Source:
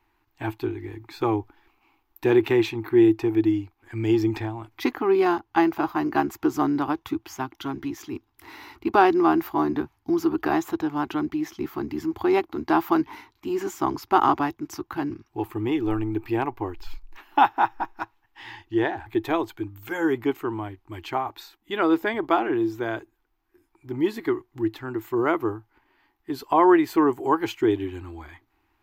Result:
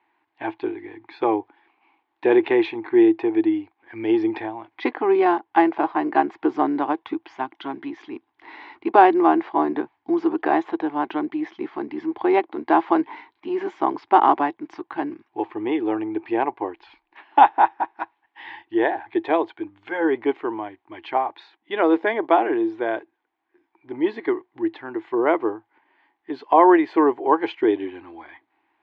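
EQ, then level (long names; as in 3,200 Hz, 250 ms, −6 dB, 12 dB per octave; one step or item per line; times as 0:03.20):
dynamic equaliser 480 Hz, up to +5 dB, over −33 dBFS, Q 1.3
loudspeaker in its box 380–3,100 Hz, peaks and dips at 390 Hz −4 dB, 1,300 Hz −9 dB, 2,700 Hz −5 dB
+5.0 dB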